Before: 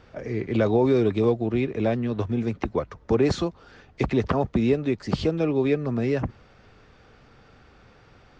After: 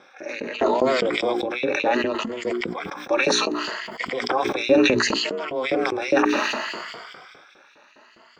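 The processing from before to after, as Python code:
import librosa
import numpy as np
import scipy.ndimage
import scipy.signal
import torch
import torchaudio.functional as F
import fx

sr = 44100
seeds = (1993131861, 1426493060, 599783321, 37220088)

y = fx.spec_ripple(x, sr, per_octave=1.6, drift_hz=0.67, depth_db=18)
y = y * np.sin(2.0 * np.pi * 130.0 * np.arange(len(y)) / sr)
y = fx.filter_lfo_highpass(y, sr, shape='saw_up', hz=4.9, low_hz=290.0, high_hz=3200.0, q=1.0)
y = fx.hum_notches(y, sr, base_hz=60, count=7)
y = fx.sustainer(y, sr, db_per_s=27.0)
y = y * librosa.db_to_amplitude(3.5)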